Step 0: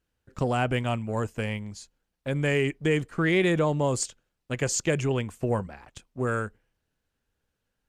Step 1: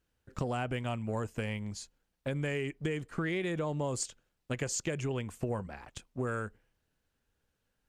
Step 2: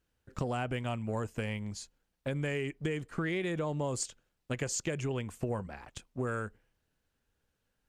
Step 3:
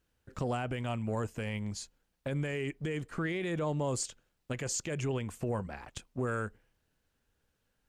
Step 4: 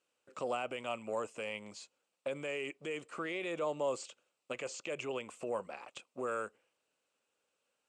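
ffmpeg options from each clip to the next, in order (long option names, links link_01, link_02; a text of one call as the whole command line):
ffmpeg -i in.wav -af "acompressor=threshold=-31dB:ratio=6" out.wav
ffmpeg -i in.wav -af anull out.wav
ffmpeg -i in.wav -af "alimiter=level_in=3dB:limit=-24dB:level=0:latency=1:release=20,volume=-3dB,volume=2dB" out.wav
ffmpeg -i in.wav -filter_complex "[0:a]acrossover=split=4400[link_01][link_02];[link_02]acompressor=threshold=-54dB:ratio=4:attack=1:release=60[link_03];[link_01][link_03]amix=inputs=2:normalize=0,highpass=380,equalizer=frequency=550:width_type=q:width=4:gain=6,equalizer=frequency=1200:width_type=q:width=4:gain=5,equalizer=frequency=1700:width_type=q:width=4:gain=-7,equalizer=frequency=2600:width_type=q:width=4:gain=7,equalizer=frequency=7900:width_type=q:width=4:gain=7,lowpass=frequency=9700:width=0.5412,lowpass=frequency=9700:width=1.3066,volume=-2.5dB" out.wav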